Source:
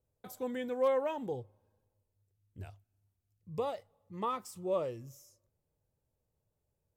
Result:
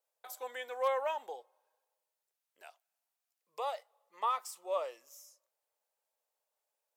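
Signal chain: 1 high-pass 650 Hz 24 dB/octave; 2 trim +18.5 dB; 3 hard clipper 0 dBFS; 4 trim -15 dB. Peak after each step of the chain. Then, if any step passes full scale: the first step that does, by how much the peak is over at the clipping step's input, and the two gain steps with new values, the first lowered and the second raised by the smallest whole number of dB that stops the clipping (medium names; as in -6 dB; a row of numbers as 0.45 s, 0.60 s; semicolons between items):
-24.5 dBFS, -6.0 dBFS, -6.0 dBFS, -21.0 dBFS; nothing clips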